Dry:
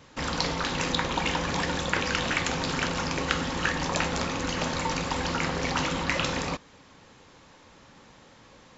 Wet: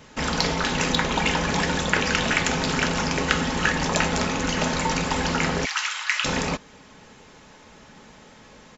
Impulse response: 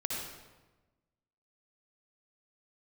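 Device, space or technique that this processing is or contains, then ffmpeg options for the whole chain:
exciter from parts: -filter_complex "[0:a]asplit=3[s0][s1][s2];[s0]afade=t=out:st=5.64:d=0.02[s3];[s1]highpass=f=1200:w=0.5412,highpass=f=1200:w=1.3066,afade=t=in:st=5.64:d=0.02,afade=t=out:st=6.24:d=0.02[s4];[s2]afade=t=in:st=6.24:d=0.02[s5];[s3][s4][s5]amix=inputs=3:normalize=0,equalizer=f=1100:t=o:w=0.24:g=-4,asplit=2[s6][s7];[s7]highpass=f=3700:w=0.5412,highpass=f=3700:w=1.3066,asoftclip=type=tanh:threshold=0.0794,volume=0.282[s8];[s6][s8]amix=inputs=2:normalize=0,aecho=1:1:4.7:0.33,volume=1.78"

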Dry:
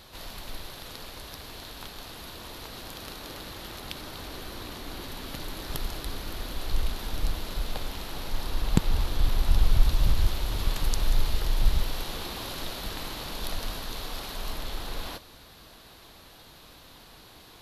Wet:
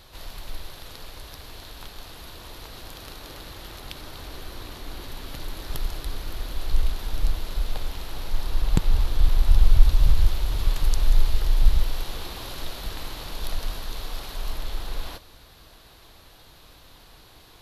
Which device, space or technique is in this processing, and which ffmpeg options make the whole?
low shelf boost with a cut just above: -af "lowshelf=f=69:g=8,equalizer=f=220:t=o:w=0.61:g=-4,volume=0.891"

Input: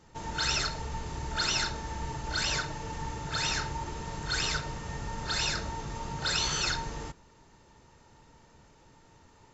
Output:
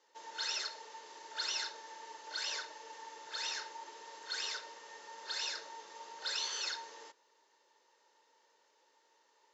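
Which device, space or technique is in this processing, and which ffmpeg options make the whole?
phone speaker on a table: -af "highpass=f=480:w=0.5412,highpass=f=480:w=1.3066,equalizer=f=710:t=q:w=4:g=-10,equalizer=f=1300:t=q:w=4:g=-8,equalizer=f=2400:t=q:w=4:g=-5,lowpass=f=6600:w=0.5412,lowpass=f=6600:w=1.3066,volume=0.501"

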